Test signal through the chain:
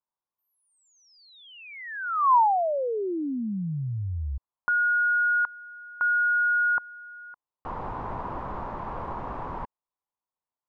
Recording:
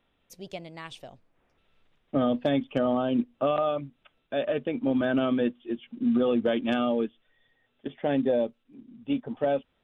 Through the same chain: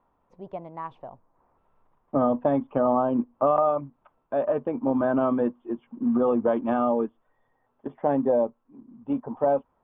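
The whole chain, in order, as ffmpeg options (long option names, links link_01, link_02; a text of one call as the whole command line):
ffmpeg -i in.wav -af "lowpass=frequency=1000:width_type=q:width=4.4" out.wav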